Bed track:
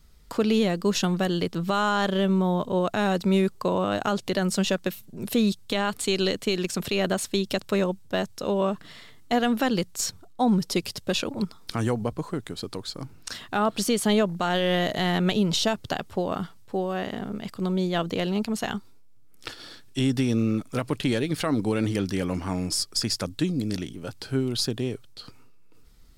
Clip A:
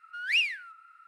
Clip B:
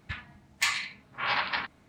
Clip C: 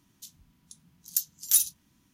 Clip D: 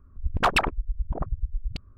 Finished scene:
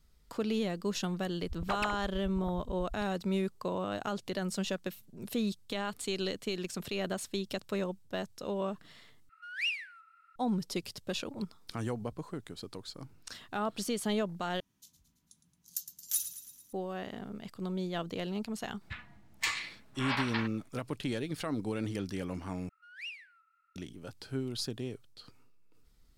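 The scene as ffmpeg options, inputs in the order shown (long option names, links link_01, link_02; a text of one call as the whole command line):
ffmpeg -i bed.wav -i cue0.wav -i cue1.wav -i cue2.wav -i cue3.wav -filter_complex "[1:a]asplit=2[link_01][link_02];[0:a]volume=-10dB[link_03];[3:a]aecho=1:1:111|222|333|444|555|666:0.251|0.146|0.0845|0.049|0.0284|0.0165[link_04];[link_03]asplit=4[link_05][link_06][link_07][link_08];[link_05]atrim=end=9.294[link_09];[link_01]atrim=end=1.07,asetpts=PTS-STARTPTS,volume=-7.5dB[link_10];[link_06]atrim=start=10.356:end=14.604[link_11];[link_04]atrim=end=2.13,asetpts=PTS-STARTPTS,volume=-10.5dB[link_12];[link_07]atrim=start=16.726:end=22.694[link_13];[link_02]atrim=end=1.07,asetpts=PTS-STARTPTS,volume=-17.5dB[link_14];[link_08]atrim=start=23.756[link_15];[4:a]atrim=end=1.97,asetpts=PTS-STARTPTS,volume=-14dB,afade=type=in:duration=0.004:curve=hsin,afade=type=out:start_time=1.966:duration=0.004:curve=hsin,adelay=1260[link_16];[2:a]atrim=end=1.88,asetpts=PTS-STARTPTS,volume=-5.5dB,afade=type=in:duration=0.004:curve=hsin,afade=type=out:start_time=1.876:duration=0.004:curve=hsin,adelay=18810[link_17];[link_09][link_10]acrossfade=duration=0.004:curve1=hsin:curve2=hsin[link_18];[link_18][link_11]acrossfade=duration=0.004:curve1=hsin:curve2=hsin[link_19];[link_19][link_12]acrossfade=duration=0.004:curve1=hsin:curve2=hsin[link_20];[link_20][link_13]acrossfade=duration=0.004:curve1=hsin:curve2=hsin[link_21];[link_21][link_14]acrossfade=duration=0.004:curve1=hsin:curve2=hsin[link_22];[link_22][link_15]acrossfade=duration=0.004:curve1=hsin:curve2=hsin[link_23];[link_23][link_16][link_17]amix=inputs=3:normalize=0" out.wav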